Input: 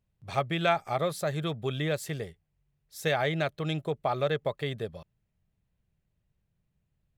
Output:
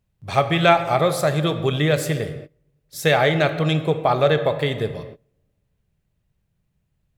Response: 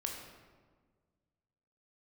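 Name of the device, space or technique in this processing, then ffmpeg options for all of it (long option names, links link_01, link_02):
keyed gated reverb: -filter_complex "[0:a]asplit=3[link_01][link_02][link_03];[1:a]atrim=start_sample=2205[link_04];[link_02][link_04]afir=irnorm=-1:irlink=0[link_05];[link_03]apad=whole_len=316476[link_06];[link_05][link_06]sidechaingate=range=-25dB:threshold=-59dB:ratio=16:detection=peak,volume=-1.5dB[link_07];[link_01][link_07]amix=inputs=2:normalize=0,volume=5.5dB"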